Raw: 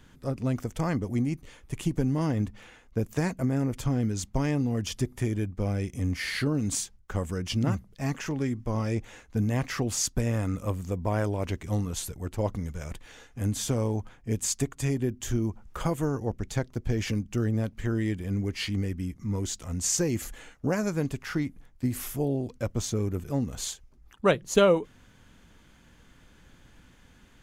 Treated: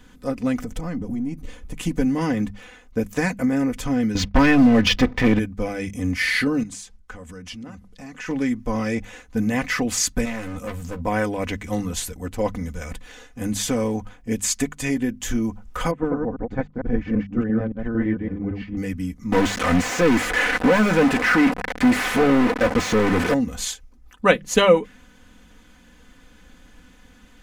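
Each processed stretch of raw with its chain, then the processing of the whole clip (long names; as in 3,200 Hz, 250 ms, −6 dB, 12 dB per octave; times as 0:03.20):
0:00.59–0:01.77: gain on one half-wave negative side −3 dB + low-shelf EQ 470 Hz +10 dB + downward compressor 20 to 1, threshold −28 dBFS
0:04.15–0:05.39: low-pass filter 4,600 Hz 24 dB per octave + leveller curve on the samples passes 3
0:06.63–0:08.29: low-pass filter 11,000 Hz + dynamic equaliser 1,700 Hz, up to +3 dB, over −46 dBFS, Q 0.92 + downward compressor 4 to 1, threshold −41 dBFS
0:10.25–0:11.03: hard clipping −32 dBFS + double-tracking delay 13 ms −6 dB
0:15.91–0:18.77: delay that plays each chunk backwards 113 ms, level −1 dB + low-pass filter 1,300 Hz + expander for the loud parts, over −43 dBFS
0:19.32–0:23.34: linear delta modulator 64 kbit/s, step −41.5 dBFS + mid-hump overdrive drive 36 dB, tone 1,100 Hz, clips at −15 dBFS + de-essing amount 75%
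whole clip: mains-hum notches 50/100/150/200 Hz; comb filter 4 ms, depth 68%; dynamic equaliser 2,000 Hz, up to +7 dB, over −49 dBFS, Q 1.4; level +4 dB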